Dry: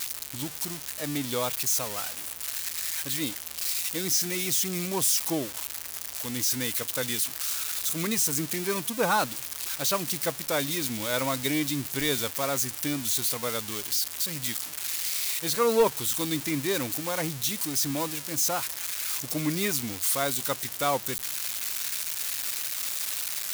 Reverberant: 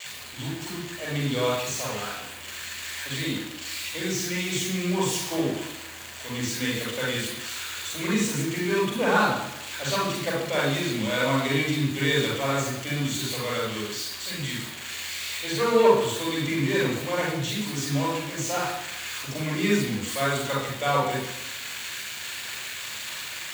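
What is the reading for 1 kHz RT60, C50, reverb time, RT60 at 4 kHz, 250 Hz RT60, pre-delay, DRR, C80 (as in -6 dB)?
0.90 s, 1.0 dB, 0.90 s, 0.90 s, 0.90 s, 40 ms, -4.5 dB, 5.0 dB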